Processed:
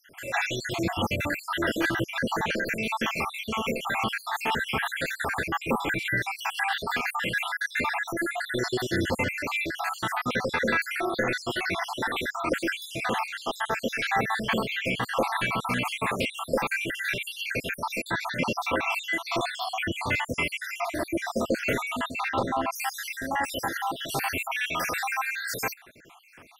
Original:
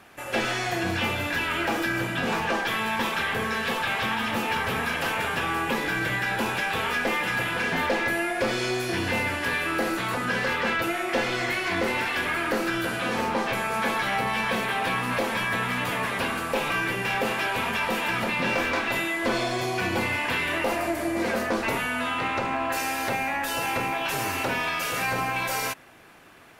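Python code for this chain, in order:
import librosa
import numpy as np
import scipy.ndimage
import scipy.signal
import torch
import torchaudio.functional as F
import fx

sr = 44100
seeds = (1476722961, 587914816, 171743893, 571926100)

y = fx.spec_dropout(x, sr, seeds[0], share_pct=68)
y = y * librosa.db_to_amplitude(3.0)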